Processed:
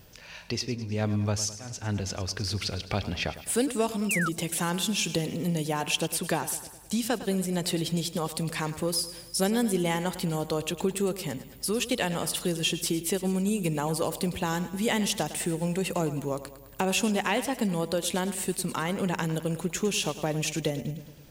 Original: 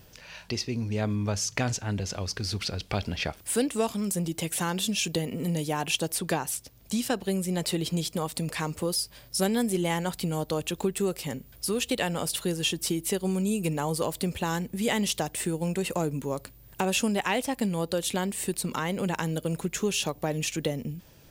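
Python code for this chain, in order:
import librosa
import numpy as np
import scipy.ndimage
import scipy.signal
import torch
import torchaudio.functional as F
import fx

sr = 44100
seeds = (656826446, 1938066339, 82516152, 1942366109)

y = fx.auto_swell(x, sr, attack_ms=409.0, at=(0.74, 1.79), fade=0.02)
y = fx.echo_feedback(y, sr, ms=105, feedback_pct=57, wet_db=-14)
y = fx.spec_paint(y, sr, seeds[0], shape='fall', start_s=4.09, length_s=0.2, low_hz=1200.0, high_hz=2900.0, level_db=-29.0)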